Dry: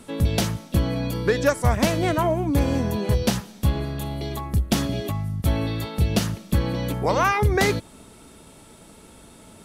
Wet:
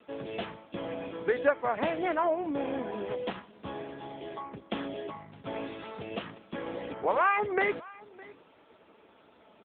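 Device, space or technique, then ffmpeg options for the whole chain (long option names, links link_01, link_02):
satellite phone: -af "highpass=370,lowpass=3300,aecho=1:1:611:0.0841,volume=-3.5dB" -ar 8000 -c:a libopencore_amrnb -b:a 6700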